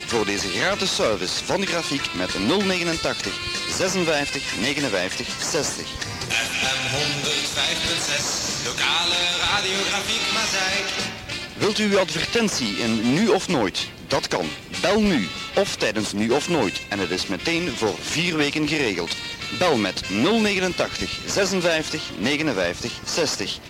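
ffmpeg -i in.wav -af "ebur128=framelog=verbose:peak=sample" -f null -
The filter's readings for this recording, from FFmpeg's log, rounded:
Integrated loudness:
  I:         -21.9 LUFS
  Threshold: -31.9 LUFS
Loudness range:
  LRA:         2.2 LU
  Threshold: -41.9 LUFS
  LRA low:   -22.8 LUFS
  LRA high:  -20.5 LUFS
Sample peak:
  Peak:       -5.3 dBFS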